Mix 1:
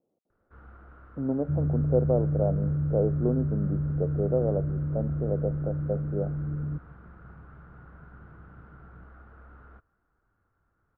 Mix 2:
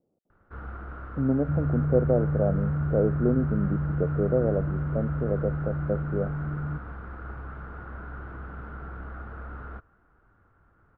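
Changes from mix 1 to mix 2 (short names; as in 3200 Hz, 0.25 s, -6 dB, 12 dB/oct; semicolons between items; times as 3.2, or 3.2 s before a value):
speech: add low shelf 180 Hz +11.5 dB; first sound +11.5 dB; second sound: remove steep low-pass 590 Hz 48 dB/oct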